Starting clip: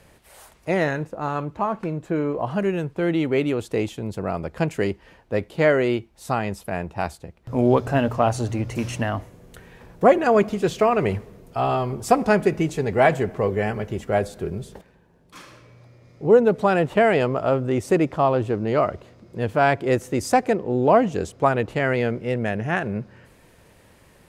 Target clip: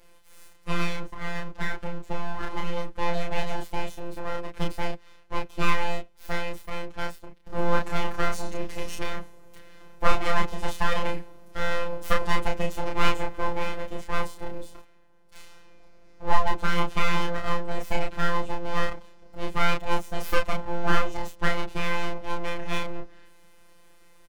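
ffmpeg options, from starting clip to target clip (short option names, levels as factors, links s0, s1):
-filter_complex "[0:a]aeval=exprs='abs(val(0))':c=same,afftfilt=real='hypot(re,im)*cos(PI*b)':imag='0':win_size=1024:overlap=0.75,asplit=2[s0][s1];[s1]adelay=31,volume=0.708[s2];[s0][s2]amix=inputs=2:normalize=0,volume=0.891"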